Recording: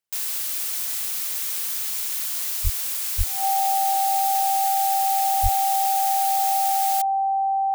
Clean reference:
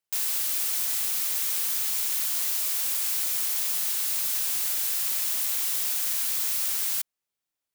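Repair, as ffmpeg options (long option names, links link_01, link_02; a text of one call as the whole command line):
ffmpeg -i in.wav -filter_complex "[0:a]bandreject=frequency=780:width=30,asplit=3[link_01][link_02][link_03];[link_01]afade=type=out:start_time=2.63:duration=0.02[link_04];[link_02]highpass=frequency=140:width=0.5412,highpass=frequency=140:width=1.3066,afade=type=in:start_time=2.63:duration=0.02,afade=type=out:start_time=2.75:duration=0.02[link_05];[link_03]afade=type=in:start_time=2.75:duration=0.02[link_06];[link_04][link_05][link_06]amix=inputs=3:normalize=0,asplit=3[link_07][link_08][link_09];[link_07]afade=type=out:start_time=3.17:duration=0.02[link_10];[link_08]highpass=frequency=140:width=0.5412,highpass=frequency=140:width=1.3066,afade=type=in:start_time=3.17:duration=0.02,afade=type=out:start_time=3.29:duration=0.02[link_11];[link_09]afade=type=in:start_time=3.29:duration=0.02[link_12];[link_10][link_11][link_12]amix=inputs=3:normalize=0,asplit=3[link_13][link_14][link_15];[link_13]afade=type=out:start_time=5.42:duration=0.02[link_16];[link_14]highpass=frequency=140:width=0.5412,highpass=frequency=140:width=1.3066,afade=type=in:start_time=5.42:duration=0.02,afade=type=out:start_time=5.54:duration=0.02[link_17];[link_15]afade=type=in:start_time=5.54:duration=0.02[link_18];[link_16][link_17][link_18]amix=inputs=3:normalize=0" out.wav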